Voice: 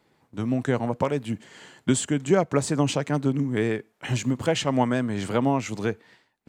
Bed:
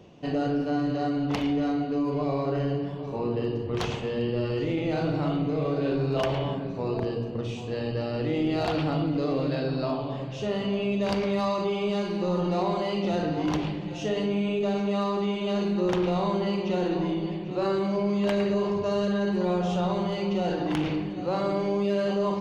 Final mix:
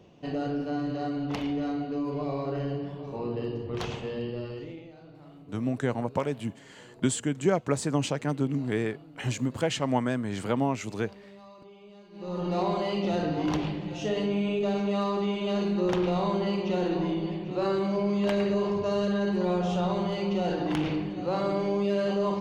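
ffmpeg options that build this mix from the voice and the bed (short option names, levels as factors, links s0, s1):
-filter_complex "[0:a]adelay=5150,volume=0.631[s0];[1:a]volume=8.41,afade=t=out:st=4.08:d=0.85:silence=0.105925,afade=t=in:st=12.11:d=0.49:silence=0.0749894[s1];[s0][s1]amix=inputs=2:normalize=0"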